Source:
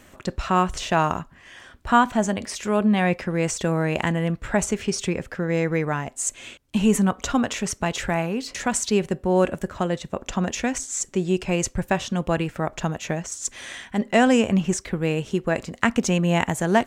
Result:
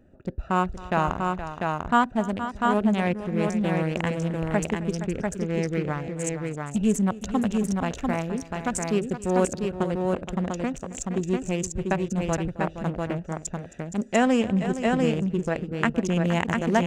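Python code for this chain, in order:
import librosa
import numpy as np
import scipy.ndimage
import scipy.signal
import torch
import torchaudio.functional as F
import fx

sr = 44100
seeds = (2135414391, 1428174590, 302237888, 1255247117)

y = fx.wiener(x, sr, points=41)
y = fx.high_shelf(y, sr, hz=5900.0, db=-4.5, at=(14.04, 16.16))
y = fx.echo_multitap(y, sr, ms=(267, 469, 695), db=(-19.0, -11.5, -3.5))
y = y * 10.0 ** (-3.0 / 20.0)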